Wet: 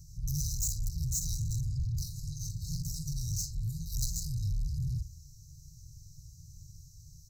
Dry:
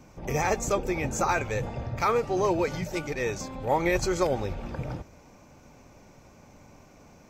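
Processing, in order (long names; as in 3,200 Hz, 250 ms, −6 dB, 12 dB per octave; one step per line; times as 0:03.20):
bass and treble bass +10 dB, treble +12 dB
double-tracking delay 49 ms −11 dB
hum removal 392.3 Hz, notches 29
soft clipping −21 dBFS, distortion −12 dB
drawn EQ curve 100 Hz 0 dB, 910 Hz −20 dB, 5,400 Hz −2 dB
hard clipping −32.5 dBFS, distortion −8 dB
brick-wall band-stop 170–3,800 Hz
expander for the loud parts 2.5 to 1, over −38 dBFS
level +4.5 dB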